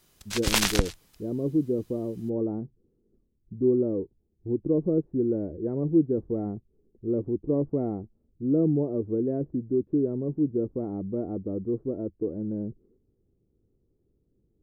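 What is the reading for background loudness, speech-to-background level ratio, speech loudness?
-26.0 LUFS, -2.5 dB, -28.5 LUFS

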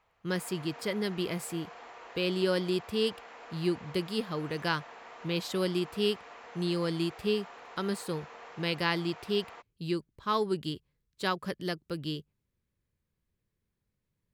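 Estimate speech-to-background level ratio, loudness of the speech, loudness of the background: 15.5 dB, -33.0 LUFS, -48.5 LUFS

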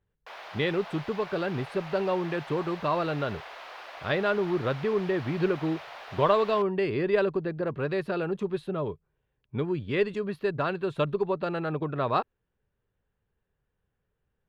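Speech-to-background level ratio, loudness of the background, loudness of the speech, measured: 14.0 dB, -43.0 LUFS, -29.0 LUFS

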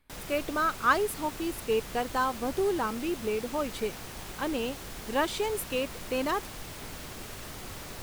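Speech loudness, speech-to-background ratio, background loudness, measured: -30.5 LUFS, 10.5 dB, -41.0 LUFS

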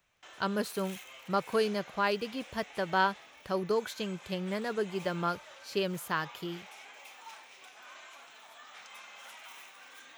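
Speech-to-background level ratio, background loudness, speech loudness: 15.5 dB, -49.0 LUFS, -33.5 LUFS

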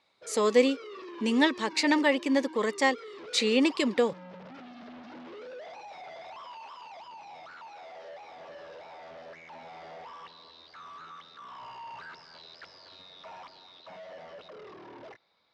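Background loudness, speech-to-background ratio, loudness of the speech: -45.5 LUFS, 19.0 dB, -26.5 LUFS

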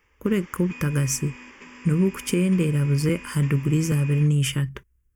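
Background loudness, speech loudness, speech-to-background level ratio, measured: -42.0 LUFS, -23.5 LUFS, 18.5 dB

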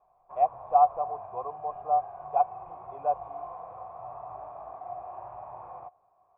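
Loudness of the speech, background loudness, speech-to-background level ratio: -28.5 LUFS, -42.5 LUFS, 14.0 dB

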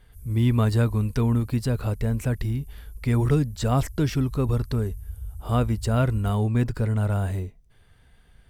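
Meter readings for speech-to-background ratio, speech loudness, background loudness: 17.0 dB, -24.5 LUFS, -41.5 LUFS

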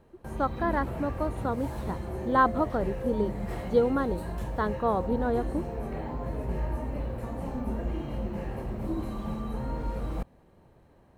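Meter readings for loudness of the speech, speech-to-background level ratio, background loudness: -29.5 LUFS, 5.5 dB, -35.0 LUFS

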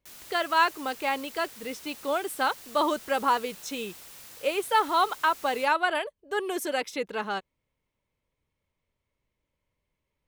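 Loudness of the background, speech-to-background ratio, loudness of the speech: -44.5 LUFS, 16.5 dB, -28.0 LUFS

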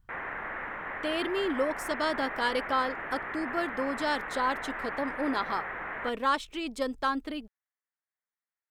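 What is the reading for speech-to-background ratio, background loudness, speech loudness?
4.5 dB, -36.5 LUFS, -32.0 LUFS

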